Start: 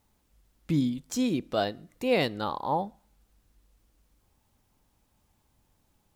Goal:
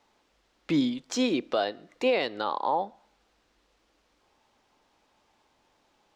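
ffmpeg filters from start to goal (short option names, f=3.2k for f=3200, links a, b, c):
-filter_complex "[0:a]acrossover=split=300 6000:gain=0.1 1 0.0631[a][b][c];[a][b][c]amix=inputs=3:normalize=0,alimiter=level_in=0.5dB:limit=-24dB:level=0:latency=1:release=300,volume=-0.5dB,volume=8.5dB"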